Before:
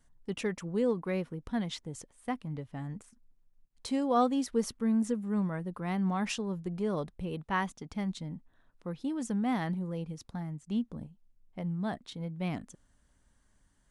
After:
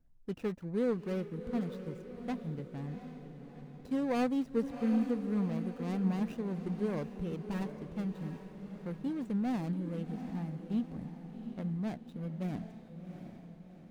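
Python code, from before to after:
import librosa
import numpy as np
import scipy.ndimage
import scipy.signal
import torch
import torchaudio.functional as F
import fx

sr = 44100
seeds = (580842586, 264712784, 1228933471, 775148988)

y = scipy.ndimage.median_filter(x, 41, mode='constant')
y = fx.echo_diffused(y, sr, ms=741, feedback_pct=50, wet_db=-9.0)
y = y * librosa.db_to_amplitude(-1.5)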